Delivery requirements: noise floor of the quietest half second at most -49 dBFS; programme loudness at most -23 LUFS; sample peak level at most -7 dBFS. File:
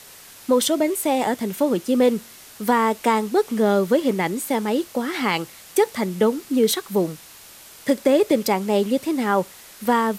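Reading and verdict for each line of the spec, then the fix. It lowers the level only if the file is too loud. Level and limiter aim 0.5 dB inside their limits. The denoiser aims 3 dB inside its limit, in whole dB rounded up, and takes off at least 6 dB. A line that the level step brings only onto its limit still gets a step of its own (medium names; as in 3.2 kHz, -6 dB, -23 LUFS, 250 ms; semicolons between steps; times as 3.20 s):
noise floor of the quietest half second -45 dBFS: fail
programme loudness -21.5 LUFS: fail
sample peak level -6.0 dBFS: fail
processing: noise reduction 6 dB, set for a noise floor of -45 dBFS; trim -2 dB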